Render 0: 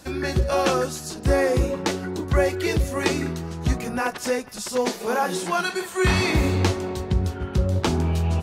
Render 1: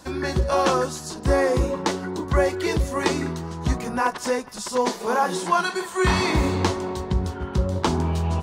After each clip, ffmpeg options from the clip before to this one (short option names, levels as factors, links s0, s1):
-af "equalizer=f=100:t=o:w=0.33:g=-7,equalizer=f=1000:t=o:w=0.33:g=8,equalizer=f=2500:t=o:w=0.33:g=-4,equalizer=f=12500:t=o:w=0.33:g=-8"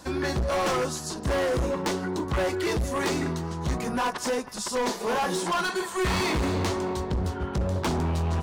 -af "volume=14.1,asoftclip=hard,volume=0.0708"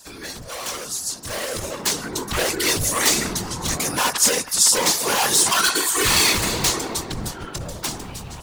-af "dynaudnorm=f=400:g=9:m=4.22,crystalizer=i=9:c=0,afftfilt=real='hypot(re,im)*cos(2*PI*random(0))':imag='hypot(re,im)*sin(2*PI*random(1))':win_size=512:overlap=0.75,volume=0.473"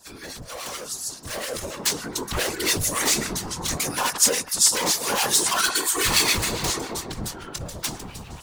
-filter_complex "[0:a]acrossover=split=1200[s0][s1];[s0]aeval=exprs='val(0)*(1-0.7/2+0.7/2*cos(2*PI*7.2*n/s))':c=same[s2];[s1]aeval=exprs='val(0)*(1-0.7/2-0.7/2*cos(2*PI*7.2*n/s))':c=same[s3];[s2][s3]amix=inputs=2:normalize=0"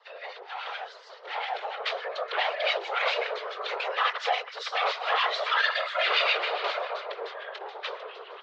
-af "highpass=f=190:t=q:w=0.5412,highpass=f=190:t=q:w=1.307,lowpass=f=3400:t=q:w=0.5176,lowpass=f=3400:t=q:w=0.7071,lowpass=f=3400:t=q:w=1.932,afreqshift=250"